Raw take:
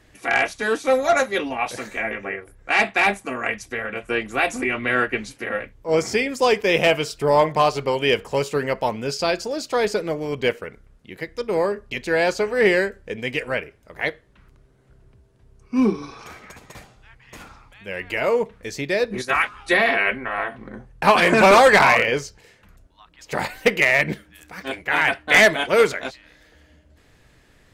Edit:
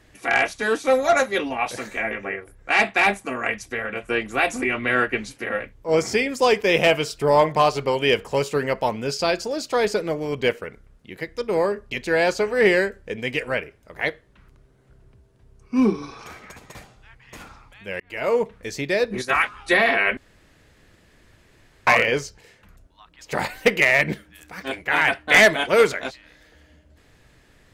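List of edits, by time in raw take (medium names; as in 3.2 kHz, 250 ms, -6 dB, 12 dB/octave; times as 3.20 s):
18.00–18.35 s: fade in
20.17–21.87 s: room tone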